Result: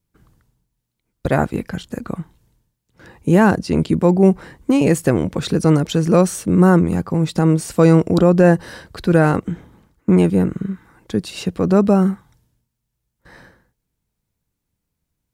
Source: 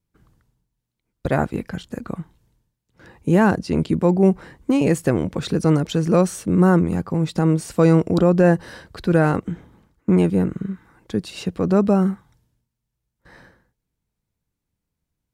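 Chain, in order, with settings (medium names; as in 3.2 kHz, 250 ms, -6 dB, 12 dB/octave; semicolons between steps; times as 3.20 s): treble shelf 7.2 kHz +4 dB; trim +3 dB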